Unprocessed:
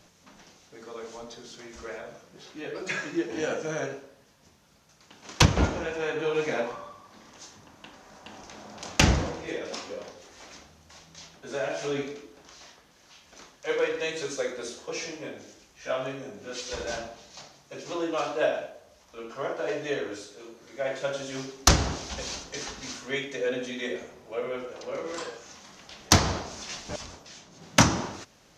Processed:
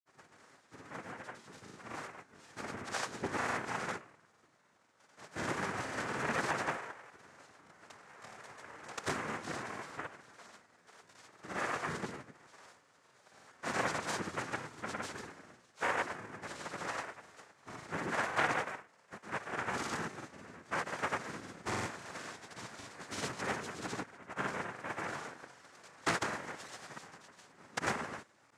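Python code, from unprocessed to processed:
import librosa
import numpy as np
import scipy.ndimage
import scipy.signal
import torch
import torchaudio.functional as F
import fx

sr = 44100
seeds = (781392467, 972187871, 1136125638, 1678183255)

y = scipy.signal.sosfilt(scipy.signal.butter(2, 1200.0, 'lowpass', fs=sr, output='sos'), x)
y = fx.tilt_eq(y, sr, slope=4.5)
y = fx.noise_vocoder(y, sr, seeds[0], bands=3)
y = fx.granulator(y, sr, seeds[1], grain_ms=100.0, per_s=20.0, spray_ms=100.0, spread_st=0)
y = fx.transformer_sat(y, sr, knee_hz=1400.0)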